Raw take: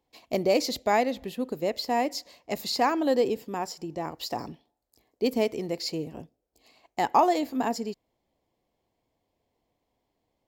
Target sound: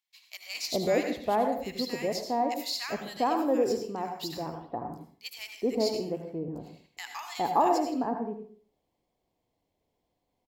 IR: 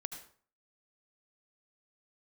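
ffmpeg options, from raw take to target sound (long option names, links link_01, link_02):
-filter_complex "[0:a]acrossover=split=1500[link_01][link_02];[link_01]adelay=410[link_03];[link_03][link_02]amix=inputs=2:normalize=0[link_04];[1:a]atrim=start_sample=2205[link_05];[link_04][link_05]afir=irnorm=-1:irlink=0"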